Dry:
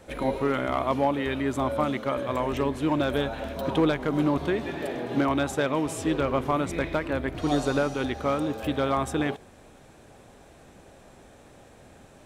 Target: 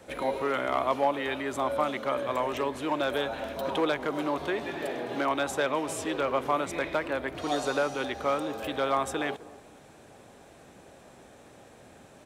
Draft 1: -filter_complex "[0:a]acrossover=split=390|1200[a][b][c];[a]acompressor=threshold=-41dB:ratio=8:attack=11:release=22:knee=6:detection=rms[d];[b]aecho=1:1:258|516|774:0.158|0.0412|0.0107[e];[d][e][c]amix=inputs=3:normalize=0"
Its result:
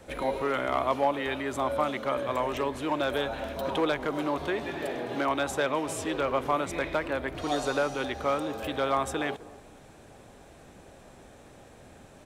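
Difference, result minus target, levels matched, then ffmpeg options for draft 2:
125 Hz band +3.0 dB
-filter_complex "[0:a]acrossover=split=390|1200[a][b][c];[a]acompressor=threshold=-41dB:ratio=8:attack=11:release=22:knee=6:detection=rms,highpass=f=130:p=1[d];[b]aecho=1:1:258|516|774:0.158|0.0412|0.0107[e];[d][e][c]amix=inputs=3:normalize=0"

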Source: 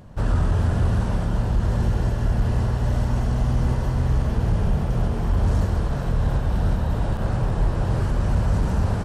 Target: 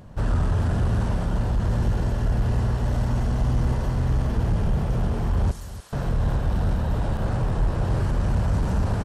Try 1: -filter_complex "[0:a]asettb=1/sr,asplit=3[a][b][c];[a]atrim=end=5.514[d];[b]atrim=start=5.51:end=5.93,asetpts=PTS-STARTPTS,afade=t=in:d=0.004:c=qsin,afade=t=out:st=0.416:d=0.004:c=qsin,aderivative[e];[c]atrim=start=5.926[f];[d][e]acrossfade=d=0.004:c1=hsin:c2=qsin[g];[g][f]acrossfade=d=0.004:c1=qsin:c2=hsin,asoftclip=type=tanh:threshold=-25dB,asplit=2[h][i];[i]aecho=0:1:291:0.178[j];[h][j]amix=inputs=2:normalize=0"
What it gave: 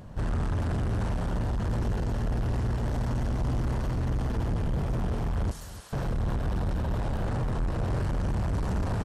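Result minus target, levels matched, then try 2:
soft clip: distortion +12 dB
-filter_complex "[0:a]asettb=1/sr,asplit=3[a][b][c];[a]atrim=end=5.514[d];[b]atrim=start=5.51:end=5.93,asetpts=PTS-STARTPTS,afade=t=in:d=0.004:c=qsin,afade=t=out:st=0.416:d=0.004:c=qsin,aderivative[e];[c]atrim=start=5.926[f];[d][e]acrossfade=d=0.004:c1=hsin:c2=qsin[g];[g][f]acrossfade=d=0.004:c1=qsin:c2=hsin,asoftclip=type=tanh:threshold=-14dB,asplit=2[h][i];[i]aecho=0:1:291:0.178[j];[h][j]amix=inputs=2:normalize=0"

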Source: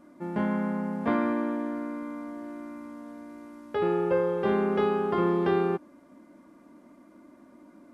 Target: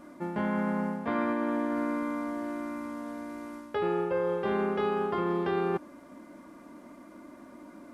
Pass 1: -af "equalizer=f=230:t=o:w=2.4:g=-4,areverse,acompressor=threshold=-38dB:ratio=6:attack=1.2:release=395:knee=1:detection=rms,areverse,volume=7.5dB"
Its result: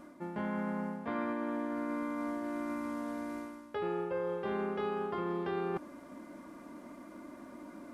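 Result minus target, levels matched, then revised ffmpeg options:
compressor: peak gain reduction +6 dB
-af "equalizer=f=230:t=o:w=2.4:g=-4,areverse,acompressor=threshold=-30.5dB:ratio=6:attack=1.2:release=395:knee=1:detection=rms,areverse,volume=7.5dB"

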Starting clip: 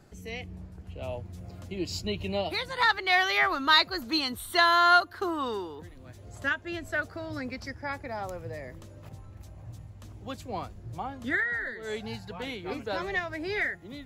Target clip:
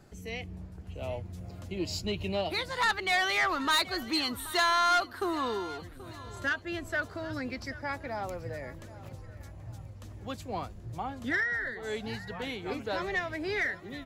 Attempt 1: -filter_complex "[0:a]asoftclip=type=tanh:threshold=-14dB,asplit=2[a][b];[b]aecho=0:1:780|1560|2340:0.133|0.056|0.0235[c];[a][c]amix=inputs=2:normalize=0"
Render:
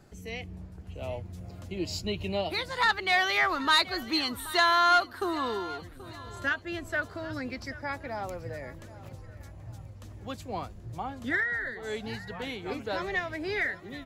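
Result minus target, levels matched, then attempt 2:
soft clip: distortion -8 dB
-filter_complex "[0:a]asoftclip=type=tanh:threshold=-21dB,asplit=2[a][b];[b]aecho=0:1:780|1560|2340:0.133|0.056|0.0235[c];[a][c]amix=inputs=2:normalize=0"

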